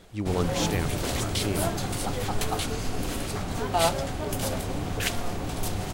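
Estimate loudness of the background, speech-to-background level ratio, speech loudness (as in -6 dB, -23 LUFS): -29.0 LUFS, -4.0 dB, -33.0 LUFS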